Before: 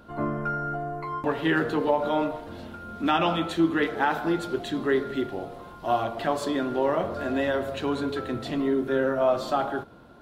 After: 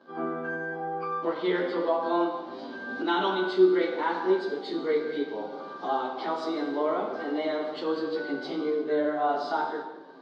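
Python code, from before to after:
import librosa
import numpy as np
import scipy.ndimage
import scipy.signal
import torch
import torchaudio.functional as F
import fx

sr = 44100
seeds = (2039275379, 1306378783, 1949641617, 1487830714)

y = fx.pitch_bins(x, sr, semitones=2.0)
y = fx.recorder_agc(y, sr, target_db=-23.0, rise_db_per_s=15.0, max_gain_db=30)
y = fx.cabinet(y, sr, low_hz=230.0, low_slope=24, high_hz=4900.0, hz=(710.0, 1800.0, 2600.0), db=(-4, -9, -7))
y = fx.rev_gated(y, sr, seeds[0], gate_ms=380, shape='falling', drr_db=4.0)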